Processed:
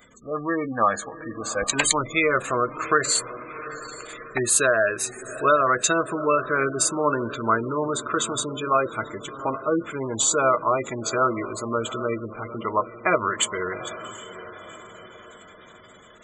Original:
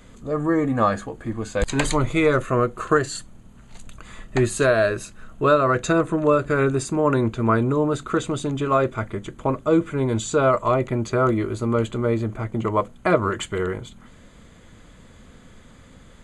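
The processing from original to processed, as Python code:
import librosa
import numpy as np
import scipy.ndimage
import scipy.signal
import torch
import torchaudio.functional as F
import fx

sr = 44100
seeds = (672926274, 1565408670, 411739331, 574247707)

y = fx.echo_diffused(x, sr, ms=761, feedback_pct=50, wet_db=-13.0)
y = fx.spec_gate(y, sr, threshold_db=-25, keep='strong')
y = fx.tilt_eq(y, sr, slope=4.0)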